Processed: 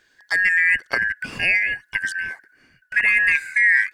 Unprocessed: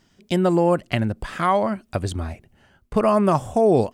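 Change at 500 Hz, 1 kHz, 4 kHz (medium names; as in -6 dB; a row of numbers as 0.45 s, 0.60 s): -22.0 dB, -17.0 dB, +3.0 dB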